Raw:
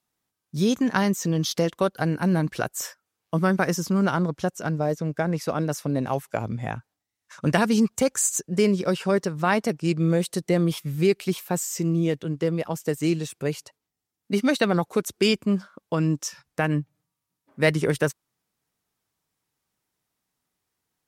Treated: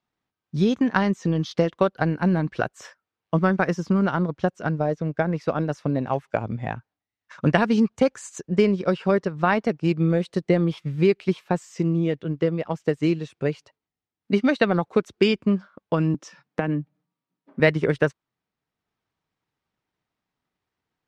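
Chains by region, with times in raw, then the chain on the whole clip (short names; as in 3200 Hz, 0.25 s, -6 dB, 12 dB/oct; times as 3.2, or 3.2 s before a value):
16.14–17.6 HPF 170 Hz 24 dB/oct + low shelf 490 Hz +9.5 dB + compressor 4:1, threshold -22 dBFS
whole clip: LPF 3400 Hz 12 dB/oct; transient shaper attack +4 dB, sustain -3 dB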